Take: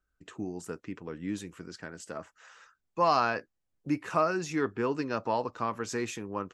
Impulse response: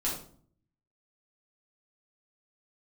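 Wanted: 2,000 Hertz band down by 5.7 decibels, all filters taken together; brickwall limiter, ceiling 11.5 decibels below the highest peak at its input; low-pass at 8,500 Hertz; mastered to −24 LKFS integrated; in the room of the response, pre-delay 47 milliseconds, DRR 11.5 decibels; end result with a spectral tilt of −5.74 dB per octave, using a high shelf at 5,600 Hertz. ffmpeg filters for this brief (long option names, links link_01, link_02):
-filter_complex "[0:a]lowpass=8500,equalizer=frequency=2000:width_type=o:gain=-8,highshelf=frequency=5600:gain=-4.5,alimiter=level_in=1.5dB:limit=-24dB:level=0:latency=1,volume=-1.5dB,asplit=2[link_01][link_02];[1:a]atrim=start_sample=2205,adelay=47[link_03];[link_02][link_03]afir=irnorm=-1:irlink=0,volume=-17dB[link_04];[link_01][link_04]amix=inputs=2:normalize=0,volume=13.5dB"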